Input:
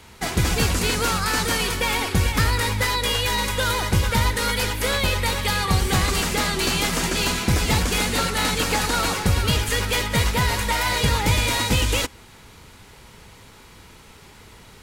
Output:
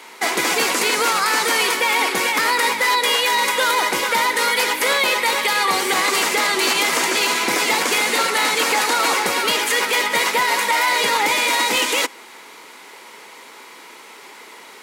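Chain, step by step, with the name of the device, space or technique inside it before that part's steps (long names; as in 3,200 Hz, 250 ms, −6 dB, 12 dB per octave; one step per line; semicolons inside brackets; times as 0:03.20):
laptop speaker (high-pass filter 300 Hz 24 dB per octave; parametric band 1,000 Hz +4.5 dB 0.49 octaves; parametric band 2,100 Hz +6 dB 0.31 octaves; brickwall limiter −14.5 dBFS, peak gain reduction 7.5 dB)
level +6 dB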